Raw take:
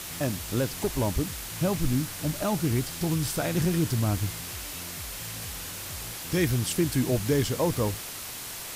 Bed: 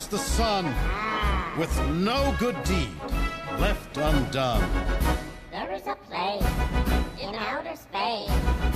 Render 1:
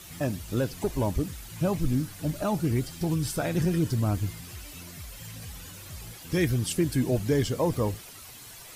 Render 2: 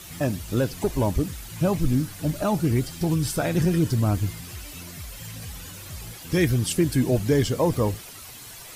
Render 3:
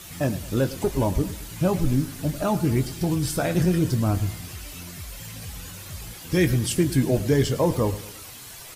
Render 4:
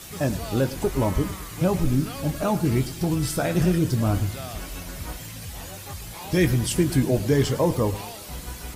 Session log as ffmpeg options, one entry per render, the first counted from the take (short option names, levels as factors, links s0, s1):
-af "afftdn=nr=11:nf=-38"
-af "volume=1.58"
-filter_complex "[0:a]asplit=2[s0][s1];[s1]adelay=22,volume=0.282[s2];[s0][s2]amix=inputs=2:normalize=0,aecho=1:1:108|216|324|432:0.158|0.0761|0.0365|0.0175"
-filter_complex "[1:a]volume=0.237[s0];[0:a][s0]amix=inputs=2:normalize=0"